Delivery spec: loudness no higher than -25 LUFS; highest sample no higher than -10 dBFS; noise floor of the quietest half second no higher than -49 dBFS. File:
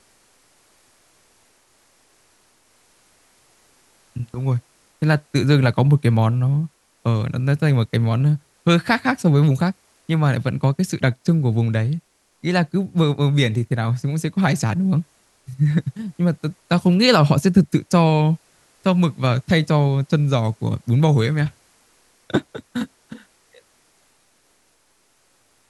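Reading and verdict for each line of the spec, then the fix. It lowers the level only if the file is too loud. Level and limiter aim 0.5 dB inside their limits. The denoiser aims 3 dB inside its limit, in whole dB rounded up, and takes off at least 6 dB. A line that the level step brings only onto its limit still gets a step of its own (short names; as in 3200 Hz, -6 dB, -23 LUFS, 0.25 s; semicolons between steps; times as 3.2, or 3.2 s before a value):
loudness -19.5 LUFS: fail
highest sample -2.5 dBFS: fail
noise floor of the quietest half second -61 dBFS: OK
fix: gain -6 dB; limiter -10.5 dBFS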